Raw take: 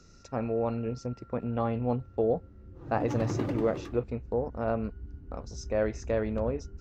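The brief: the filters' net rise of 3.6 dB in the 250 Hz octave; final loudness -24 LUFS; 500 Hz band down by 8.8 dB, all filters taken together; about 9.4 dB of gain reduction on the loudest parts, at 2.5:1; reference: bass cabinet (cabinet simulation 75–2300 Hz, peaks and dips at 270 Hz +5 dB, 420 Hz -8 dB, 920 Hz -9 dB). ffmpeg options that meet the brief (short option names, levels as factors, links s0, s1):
-af "equalizer=f=250:t=o:g=4,equalizer=f=500:t=o:g=-7.5,acompressor=threshold=0.0112:ratio=2.5,highpass=f=75:w=0.5412,highpass=f=75:w=1.3066,equalizer=f=270:t=q:w=4:g=5,equalizer=f=420:t=q:w=4:g=-8,equalizer=f=920:t=q:w=4:g=-9,lowpass=f=2300:w=0.5412,lowpass=f=2300:w=1.3066,volume=6.68"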